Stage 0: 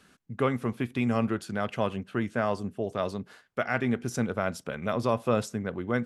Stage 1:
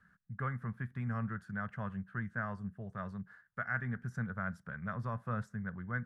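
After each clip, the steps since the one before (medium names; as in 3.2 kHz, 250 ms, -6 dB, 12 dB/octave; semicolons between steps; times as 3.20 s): FFT filter 190 Hz 0 dB, 290 Hz -20 dB, 810 Hz -12 dB, 1.7 kHz +3 dB, 2.5 kHz -21 dB; trim -4 dB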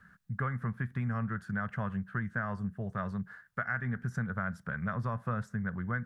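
compression 4:1, threshold -38 dBFS, peak gain reduction 8 dB; trim +8 dB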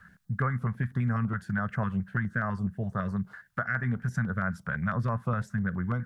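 step-sequenced notch 12 Hz 310–3400 Hz; trim +5.5 dB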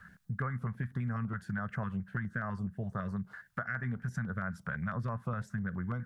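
compression 2:1, threshold -37 dBFS, peak gain reduction 7.5 dB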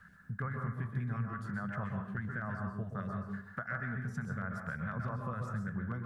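plate-style reverb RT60 0.65 s, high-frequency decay 0.45×, pre-delay 115 ms, DRR 2 dB; trim -3.5 dB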